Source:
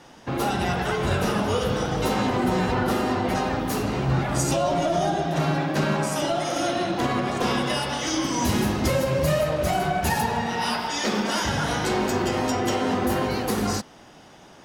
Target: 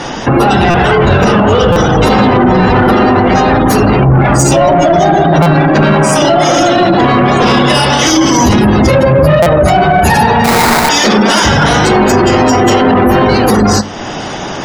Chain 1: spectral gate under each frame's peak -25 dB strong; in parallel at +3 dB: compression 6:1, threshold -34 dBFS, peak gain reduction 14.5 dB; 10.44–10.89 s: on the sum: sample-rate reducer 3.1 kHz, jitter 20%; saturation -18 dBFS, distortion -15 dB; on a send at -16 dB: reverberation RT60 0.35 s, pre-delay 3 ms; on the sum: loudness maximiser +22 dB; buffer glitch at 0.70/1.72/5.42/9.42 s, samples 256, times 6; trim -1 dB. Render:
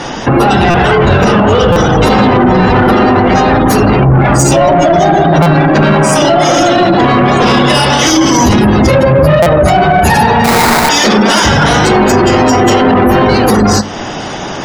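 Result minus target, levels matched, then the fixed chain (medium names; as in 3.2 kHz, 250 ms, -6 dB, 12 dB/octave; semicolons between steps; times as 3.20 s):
compression: peak gain reduction -5.5 dB
spectral gate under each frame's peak -25 dB strong; in parallel at +3 dB: compression 6:1, threshold -40.5 dBFS, peak gain reduction 20 dB; 10.44–10.89 s: on the sum: sample-rate reducer 3.1 kHz, jitter 20%; saturation -18 dBFS, distortion -16 dB; on a send at -16 dB: reverberation RT60 0.35 s, pre-delay 3 ms; on the sum: loudness maximiser +22 dB; buffer glitch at 0.70/1.72/5.42/9.42 s, samples 256, times 6; trim -1 dB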